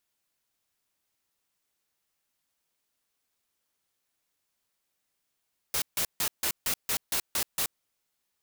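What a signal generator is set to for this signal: noise bursts white, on 0.08 s, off 0.15 s, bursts 9, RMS -28 dBFS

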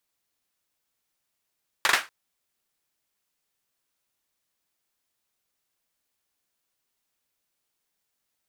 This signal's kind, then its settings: hand clap length 0.24 s, bursts 3, apart 41 ms, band 1500 Hz, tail 0.24 s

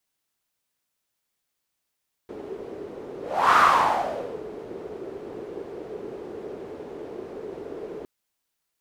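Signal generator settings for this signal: whoosh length 5.76 s, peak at 1.26, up 0.38 s, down 0.96 s, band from 410 Hz, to 1200 Hz, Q 4.6, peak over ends 20 dB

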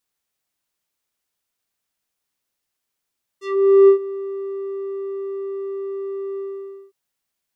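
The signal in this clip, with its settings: synth note square G4 12 dB/oct, low-pass 620 Hz, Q 1.3, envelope 4 oct, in 0.15 s, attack 0.471 s, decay 0.10 s, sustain -19 dB, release 0.54 s, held 2.97 s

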